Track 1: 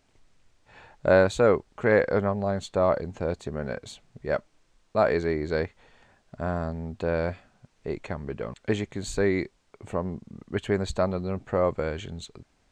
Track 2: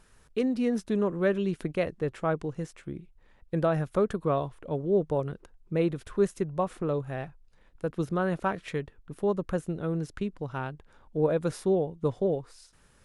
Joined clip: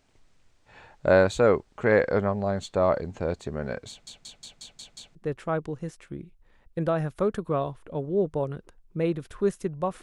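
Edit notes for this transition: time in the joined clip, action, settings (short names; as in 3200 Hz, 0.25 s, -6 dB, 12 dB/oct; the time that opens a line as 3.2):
track 1
3.89 stutter in place 0.18 s, 7 plays
5.15 switch to track 2 from 1.91 s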